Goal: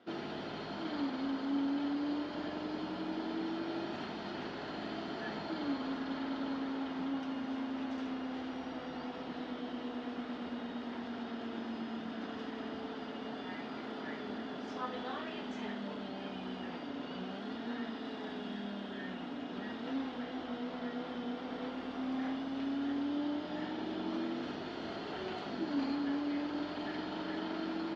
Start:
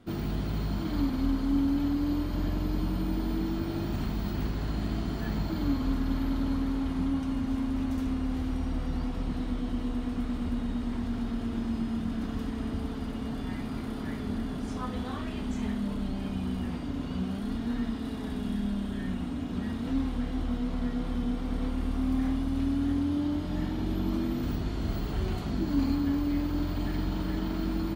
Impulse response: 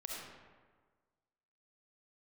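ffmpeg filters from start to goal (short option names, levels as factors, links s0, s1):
-af "highpass=440,equalizer=f=1100:t=q:w=4:g=-5,equalizer=f=2300:t=q:w=4:g=-4,equalizer=f=4100:t=q:w=4:g=-4,lowpass=f=4700:w=0.5412,lowpass=f=4700:w=1.3066,volume=1.19"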